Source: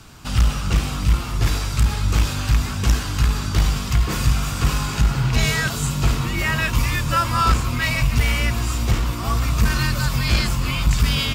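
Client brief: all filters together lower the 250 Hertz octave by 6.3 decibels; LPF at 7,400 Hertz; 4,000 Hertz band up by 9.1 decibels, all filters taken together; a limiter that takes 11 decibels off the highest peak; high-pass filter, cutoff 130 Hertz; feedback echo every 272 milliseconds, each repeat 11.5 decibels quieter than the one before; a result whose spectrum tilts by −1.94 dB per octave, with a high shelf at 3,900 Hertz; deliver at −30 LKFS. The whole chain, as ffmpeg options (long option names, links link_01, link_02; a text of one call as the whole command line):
ffmpeg -i in.wav -af "highpass=130,lowpass=7400,equalizer=frequency=250:width_type=o:gain=-8.5,highshelf=frequency=3900:gain=6.5,equalizer=frequency=4000:width_type=o:gain=8,alimiter=limit=-13dB:level=0:latency=1,aecho=1:1:272|544|816:0.266|0.0718|0.0194,volume=-8dB" out.wav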